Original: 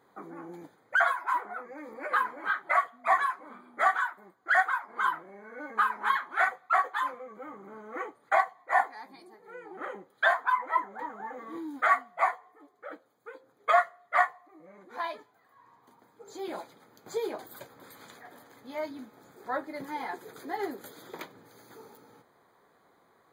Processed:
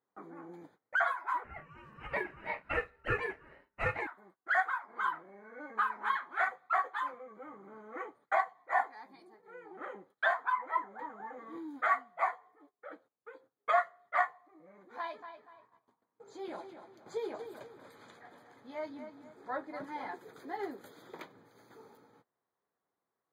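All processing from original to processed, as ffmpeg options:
-filter_complex "[0:a]asettb=1/sr,asplit=3[s0][s1][s2];[s0]atrim=end=1.444[s3];[s1]atrim=start=1.44:end=4.07,asetpts=PTS-STARTPTS,afade=t=in:d=0.004:c=qsin,afade=t=out:st=2.626:d=0.004:c=qsin,highpass=360,aeval=exprs='val(0)*sin(2*PI*650*n/s)':c=same[s4];[s2]atrim=start=4.066[s5];[s3][s4]acrossfade=d=0.004:c1=hsin:c2=qsin[s6];[s6][s5]acrossfade=d=0.004:c1=qsin:c2=hsin,asettb=1/sr,asplit=3[s7][s8][s9];[s7]atrim=end=14.984[s10];[s8]atrim=start=14.98:end=20.13,asetpts=PTS-STARTPTS,afade=t=in:d=0.004:c=qsin,afade=t=out:st=5.146:d=0.004:c=qsin,lowpass=11000,asplit=2[s11][s12];[s12]adelay=240,lowpass=f=3800:p=1,volume=0.355,asplit=2[s13][s14];[s14]adelay=240,lowpass=f=3800:p=1,volume=0.35,asplit=2[s15][s16];[s16]adelay=240,lowpass=f=3800:p=1,volume=0.35,asplit=2[s17][s18];[s18]adelay=240,lowpass=f=3800:p=1,volume=0.35[s19];[s11][s13][s15][s17][s19]amix=inputs=5:normalize=0,atrim=end_sample=227115[s20];[s9]atrim=start=20.126[s21];[s10][s20]acrossfade=d=0.004:c1=hsin:c2=qsin[s22];[s22][s21]acrossfade=d=0.004:c1=qsin:c2=hsin,agate=range=0.112:threshold=0.00158:ratio=16:detection=peak,lowpass=f=3900:p=1,volume=0.562"

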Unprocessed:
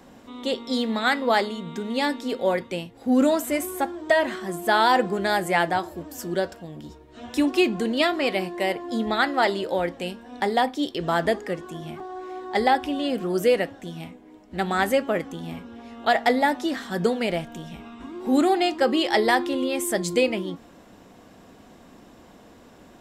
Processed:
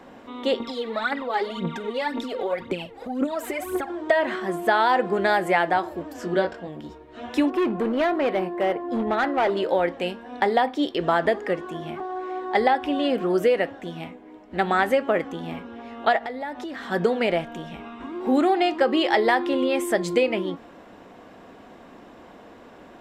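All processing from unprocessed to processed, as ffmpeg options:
-filter_complex "[0:a]asettb=1/sr,asplit=3[s0][s1][s2];[s0]atrim=end=0.604[s3];[s1]atrim=start=0.6:end=3.9,asetpts=PTS-STARTPTS,afade=t=in:d=0.004:c=qsin,afade=t=out:st=3.296:d=0.004:c=qsin,acompressor=threshold=0.0355:ratio=8:attack=3.2:release=140:knee=1:detection=peak,aphaser=in_gain=1:out_gain=1:delay=2.7:decay=0.7:speed=1.9:type=triangular[s4];[s2]atrim=start=3.896[s5];[s3][s4]acrossfade=d=0.004:c1=hsin:c2=qsin[s6];[s6][s5]acrossfade=d=0.004:c1=qsin:c2=hsin,asettb=1/sr,asplit=3[s7][s8][s9];[s7]atrim=end=6.134[s10];[s8]atrim=start=6.13:end=6.68,asetpts=PTS-STARTPTS,afade=t=in:d=0.004:c=qsin,afade=t=out:st=0.546:d=0.004:c=qsin,adynamicsmooth=sensitivity=1.5:basefreq=7200,asplit=2[s11][s12];[s12]adelay=22,volume=0.708[s13];[s11][s13]amix=inputs=2:normalize=0,atrim=end_sample=24255[s14];[s9]atrim=start=6.676[s15];[s10][s14]acrossfade=d=0.004:c1=hsin:c2=qsin[s16];[s16][s15]acrossfade=d=0.004:c1=qsin:c2=hsin,asettb=1/sr,asplit=3[s17][s18][s19];[s17]atrim=end=7.504[s20];[s18]atrim=start=7.5:end=9.57,asetpts=PTS-STARTPTS,afade=t=in:d=0.004:c=qsin,afade=t=out:st=2.066:d=0.004:c=qsin,equalizer=f=5000:w=0.41:g=-11.5,asoftclip=type=hard:threshold=0.0794[s21];[s19]atrim=start=9.566[s22];[s20][s21]acrossfade=d=0.004:c1=hsin:c2=qsin[s23];[s23][s22]acrossfade=d=0.004:c1=qsin:c2=hsin,asettb=1/sr,asplit=3[s24][s25][s26];[s24]atrim=end=16.184[s27];[s25]atrim=start=16.18:end=16.9,asetpts=PTS-STARTPTS,afade=t=in:d=0.004:c=qsin,afade=t=out:st=0.716:d=0.004:c=qsin,acompressor=threshold=0.02:ratio=6:attack=3.2:release=140:knee=1:detection=peak,aeval=exprs='val(0)+0.000891*(sin(2*PI*60*n/s)+sin(2*PI*2*60*n/s)/2+sin(2*PI*3*60*n/s)/3+sin(2*PI*4*60*n/s)/4+sin(2*PI*5*60*n/s)/5)':c=same[s28];[s26]atrim=start=16.896[s29];[s27][s28]acrossfade=d=0.004:c1=hsin:c2=qsin[s30];[s30][s29]acrossfade=d=0.004:c1=qsin:c2=hsin,bass=f=250:g=-8,treble=f=4000:g=-13,acompressor=threshold=0.0794:ratio=4,volume=1.88"

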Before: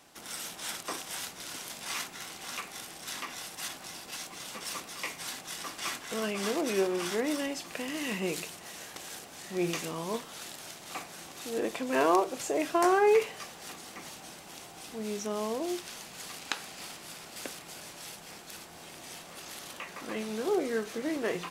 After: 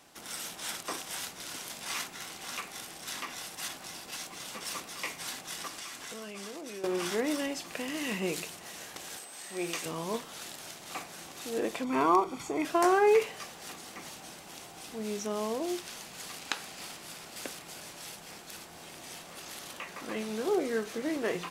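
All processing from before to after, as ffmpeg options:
-filter_complex "[0:a]asettb=1/sr,asplit=3[s0][s1][s2];[s0]atrim=end=5.674[s3];[s1]atrim=start=5.67:end=6.84,asetpts=PTS-STARTPTS,afade=t=in:d=0.004:c=qsin,afade=t=out:st=1.166:d=0.004:c=qsin,equalizer=f=7400:t=o:w=2.1:g=4,acompressor=threshold=0.0126:ratio=12:attack=3.2:release=140:knee=1:detection=peak[s4];[s2]atrim=start=6.836[s5];[s3][s4]acrossfade=d=0.004:c1=hsin:c2=qsin[s6];[s6][s5]acrossfade=d=0.004:c1=qsin:c2=hsin,asettb=1/sr,asplit=3[s7][s8][s9];[s7]atrim=end=9.174[s10];[s8]atrim=start=9.17:end=9.86,asetpts=PTS-STARTPTS,afade=t=in:d=0.004:c=qsin,afade=t=out:st=0.686:d=0.004:c=qsin,highpass=f=520:p=1,aeval=exprs='val(0)+0.00398*sin(2*PI*8200*n/s)':c=same[s11];[s9]atrim=start=9.856[s12];[s10][s11]acrossfade=d=0.004:c1=hsin:c2=qsin[s13];[s13][s12]acrossfade=d=0.004:c1=qsin:c2=hsin,asettb=1/sr,asplit=3[s14][s15][s16];[s14]atrim=end=11.844[s17];[s15]atrim=start=11.84:end=12.65,asetpts=PTS-STARTPTS,afade=t=in:d=0.004:c=qsin,afade=t=out:st=0.806:d=0.004:c=qsin,highshelf=f=3200:g=-10.5,aecho=1:1:0.9:0.74,atrim=end_sample=35721[s18];[s16]atrim=start=12.646[s19];[s17][s18]acrossfade=d=0.004:c1=hsin:c2=qsin[s20];[s20][s19]acrossfade=d=0.004:c1=qsin:c2=hsin"

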